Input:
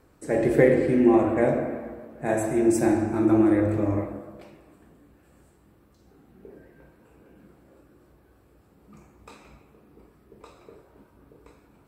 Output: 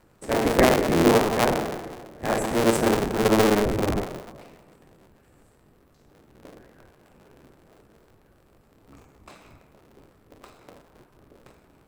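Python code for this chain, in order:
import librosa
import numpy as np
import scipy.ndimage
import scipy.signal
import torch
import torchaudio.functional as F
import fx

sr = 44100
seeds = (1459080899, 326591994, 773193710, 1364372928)

y = fx.cycle_switch(x, sr, every=3, mode='inverted')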